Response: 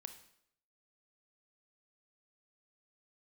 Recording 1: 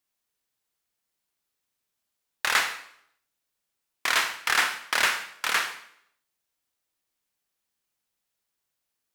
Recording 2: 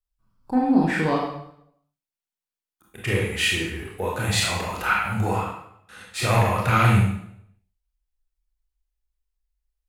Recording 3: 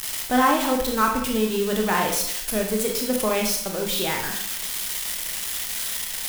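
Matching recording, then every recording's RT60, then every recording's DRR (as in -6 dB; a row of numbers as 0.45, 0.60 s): 1; 0.70, 0.70, 0.70 s; 8.0, -3.5, 1.0 dB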